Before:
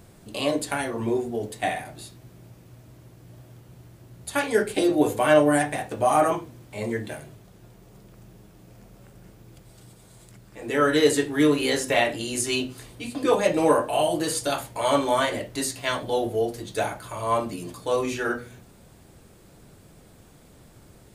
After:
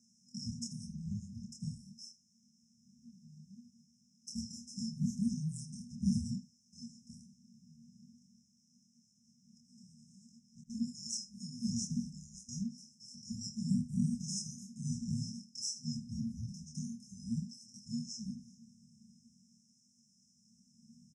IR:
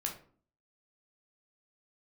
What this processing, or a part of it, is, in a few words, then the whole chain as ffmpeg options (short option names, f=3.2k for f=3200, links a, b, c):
voice changer toy: -filter_complex "[0:a]aeval=exprs='val(0)*sin(2*PI*600*n/s+600*0.55/0.45*sin(2*PI*0.45*n/s))':c=same,highpass=440,equalizer=f=610:t=q:w=4:g=-5,equalizer=f=2k:t=q:w=4:g=9,equalizer=f=3.7k:t=q:w=4:g=-9,lowpass=f=4.3k:w=0.5412,lowpass=f=4.3k:w=1.3066,asettb=1/sr,asplit=3[a][b][c];[a]atrim=end=10.614[d];[b]atrim=start=10.61:end=12.49,asetpts=PTS-STARTPTS,afade=t=in:d=0.004:c=qsin,afade=t=out:st=1.876:d=0.004:c=qsin,agate=range=-26dB:threshold=-36dB:ratio=16:detection=peak[e];[c]atrim=start=12.486[f];[d][e]acrossfade=d=0.004:c1=hsin:c2=qsin[g];[g][f]acrossfade=d=0.004:c1=qsin:c2=hsin,aecho=1:1:26|79:0.668|0.178,afftfilt=real='re*(1-between(b*sr/4096,250,5100))':imag='im*(1-between(b*sr/4096,250,5100))':win_size=4096:overlap=0.75,volume=12dB"